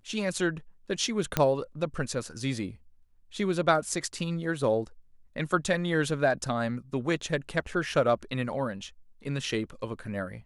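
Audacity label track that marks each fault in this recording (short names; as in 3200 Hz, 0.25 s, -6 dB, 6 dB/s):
1.370000	1.370000	pop -9 dBFS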